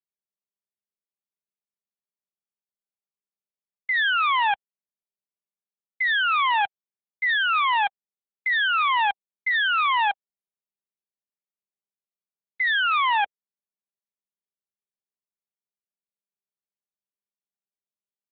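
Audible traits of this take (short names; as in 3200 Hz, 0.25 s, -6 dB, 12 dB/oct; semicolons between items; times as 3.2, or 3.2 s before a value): a quantiser's noise floor 10-bit, dither none; AMR-NB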